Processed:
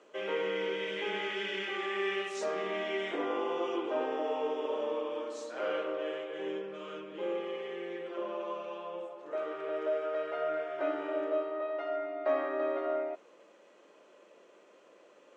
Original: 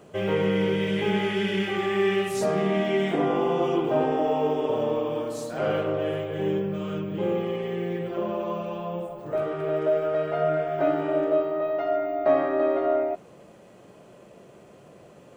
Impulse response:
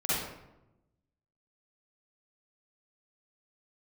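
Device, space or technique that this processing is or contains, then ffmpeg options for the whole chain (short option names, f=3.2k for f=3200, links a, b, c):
phone speaker on a table: -af "highpass=f=340:w=0.5412,highpass=f=340:w=1.3066,equalizer=f=400:t=q:w=4:g=-5,equalizer=f=720:t=q:w=4:g=-9,equalizer=f=4.7k:t=q:w=4:g=-4,lowpass=f=6.8k:w=0.5412,lowpass=f=6.8k:w=1.3066,volume=-4.5dB"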